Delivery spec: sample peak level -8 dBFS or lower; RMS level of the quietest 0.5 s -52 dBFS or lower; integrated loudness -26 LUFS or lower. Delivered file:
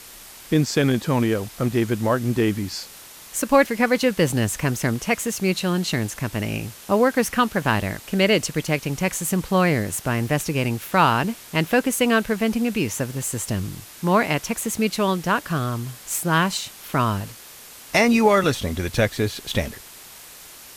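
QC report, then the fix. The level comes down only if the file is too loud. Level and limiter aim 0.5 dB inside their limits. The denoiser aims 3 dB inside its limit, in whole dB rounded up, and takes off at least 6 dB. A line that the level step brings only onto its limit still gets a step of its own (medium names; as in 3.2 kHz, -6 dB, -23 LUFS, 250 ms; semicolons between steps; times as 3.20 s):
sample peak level -4.5 dBFS: fail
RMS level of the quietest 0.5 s -43 dBFS: fail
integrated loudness -22.0 LUFS: fail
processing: noise reduction 8 dB, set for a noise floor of -43 dBFS; trim -4.5 dB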